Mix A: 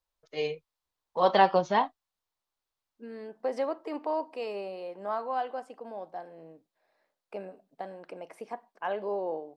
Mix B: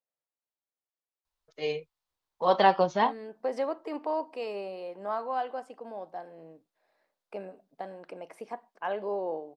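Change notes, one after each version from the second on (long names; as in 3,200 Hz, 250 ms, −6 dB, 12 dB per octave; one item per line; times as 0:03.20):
first voice: entry +1.25 s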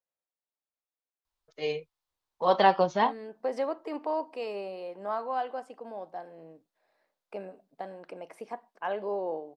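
nothing changed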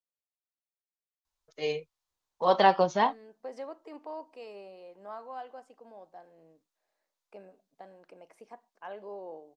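second voice −10.0 dB
master: add parametric band 6,600 Hz +5.5 dB 0.62 octaves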